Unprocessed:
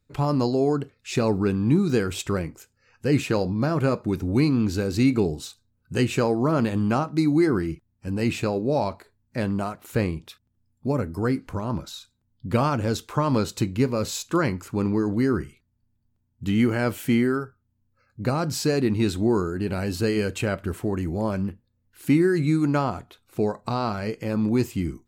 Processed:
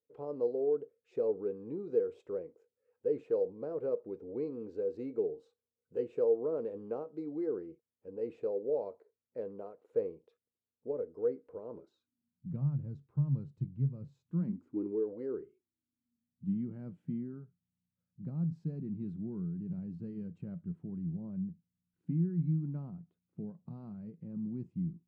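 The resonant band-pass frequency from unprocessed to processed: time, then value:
resonant band-pass, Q 10
0:11.72 470 Hz
0:12.64 140 Hz
0:14.23 140 Hz
0:15.15 530 Hz
0:16.58 170 Hz

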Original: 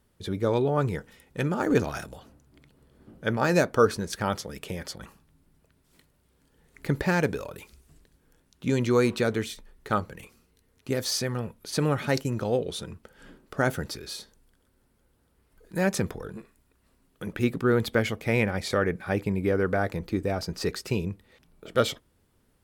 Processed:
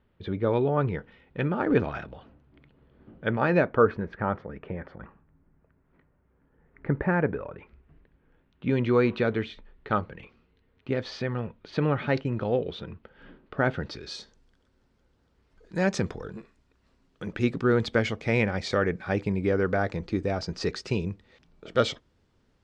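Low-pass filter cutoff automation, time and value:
low-pass filter 24 dB per octave
0:03.39 3,200 Hz
0:04.26 1,900 Hz
0:07.21 1,900 Hz
0:09.02 3,400 Hz
0:13.68 3,400 Hz
0:14.19 6,300 Hz

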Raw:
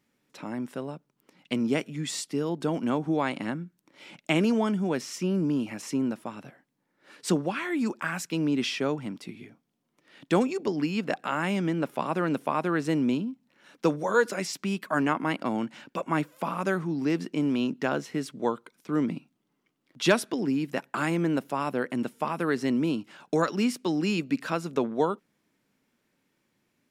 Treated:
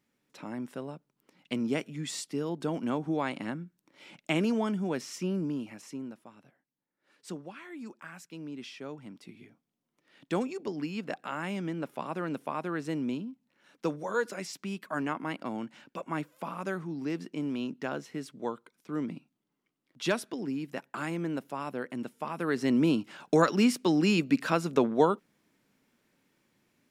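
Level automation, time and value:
0:05.28 −4 dB
0:06.27 −15 dB
0:08.74 −15 dB
0:09.42 −7 dB
0:22.23 −7 dB
0:22.84 +2 dB

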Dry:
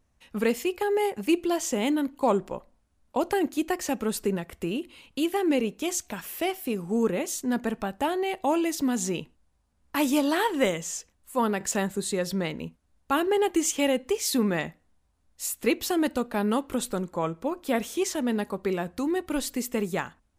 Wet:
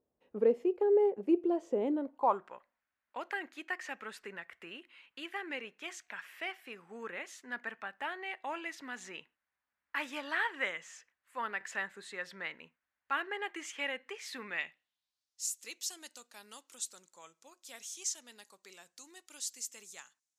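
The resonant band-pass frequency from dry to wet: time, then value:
resonant band-pass, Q 2.4
0:01.93 440 Hz
0:02.57 1,800 Hz
0:14.36 1,800 Hz
0:15.51 6,500 Hz

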